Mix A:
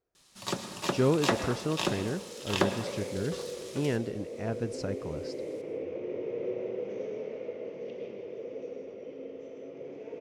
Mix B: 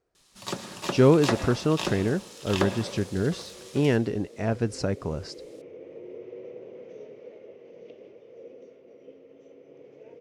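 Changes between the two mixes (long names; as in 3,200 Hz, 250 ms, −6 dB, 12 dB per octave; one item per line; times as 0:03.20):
speech +7.5 dB
second sound: send off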